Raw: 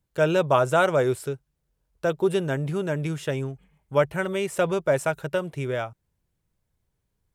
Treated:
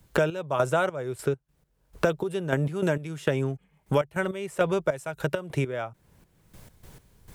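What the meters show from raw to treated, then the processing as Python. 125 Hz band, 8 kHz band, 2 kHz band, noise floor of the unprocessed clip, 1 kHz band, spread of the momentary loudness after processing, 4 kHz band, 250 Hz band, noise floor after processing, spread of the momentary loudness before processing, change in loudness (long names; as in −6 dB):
−1.0 dB, −4.0 dB, −2.0 dB, −77 dBFS, −4.0 dB, 6 LU, −3.5 dB, −1.5 dB, −69 dBFS, 11 LU, −3.0 dB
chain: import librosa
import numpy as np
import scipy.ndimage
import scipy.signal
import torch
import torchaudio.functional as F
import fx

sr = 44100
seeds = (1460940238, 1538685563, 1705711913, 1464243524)

y = fx.step_gate(x, sr, bpm=101, pattern='.x..xx..x', floor_db=-12.0, edge_ms=4.5)
y = fx.band_squash(y, sr, depth_pct=100)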